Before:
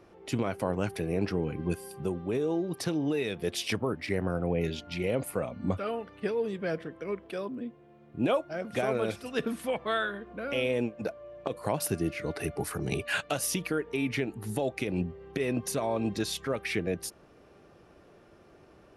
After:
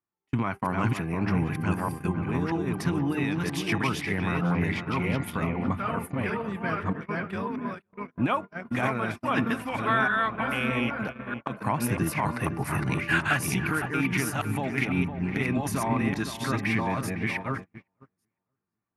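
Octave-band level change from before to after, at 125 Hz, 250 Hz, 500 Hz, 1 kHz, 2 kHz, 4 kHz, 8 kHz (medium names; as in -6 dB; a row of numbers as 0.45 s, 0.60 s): +7.0 dB, +5.0 dB, -3.0 dB, +8.5 dB, +8.0 dB, 0.0 dB, -0.5 dB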